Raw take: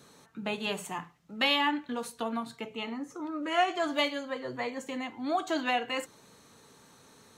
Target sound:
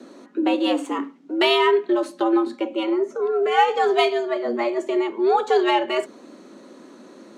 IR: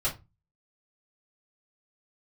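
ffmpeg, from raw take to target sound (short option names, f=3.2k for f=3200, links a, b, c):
-af "equalizer=f=130:w=0.33:g=14.5,adynamicsmooth=sensitivity=4.5:basefreq=7.1k,afreqshift=110,volume=5dB"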